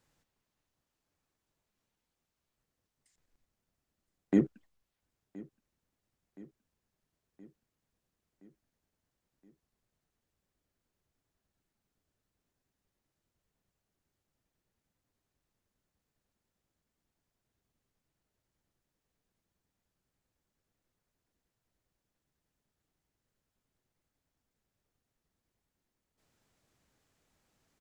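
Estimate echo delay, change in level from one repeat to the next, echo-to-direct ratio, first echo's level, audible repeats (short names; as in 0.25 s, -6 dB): 1.021 s, -4.5 dB, -19.0 dB, -21.0 dB, 4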